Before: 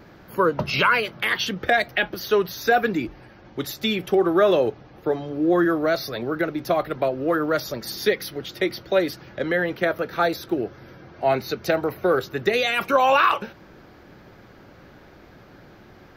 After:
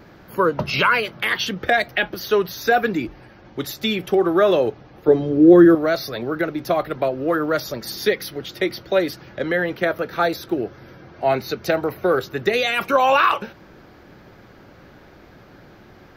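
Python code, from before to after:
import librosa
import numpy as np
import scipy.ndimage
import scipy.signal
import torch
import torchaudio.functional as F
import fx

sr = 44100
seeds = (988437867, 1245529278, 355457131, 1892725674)

y = fx.low_shelf_res(x, sr, hz=570.0, db=7.0, q=1.5, at=(5.08, 5.75))
y = y * librosa.db_to_amplitude(1.5)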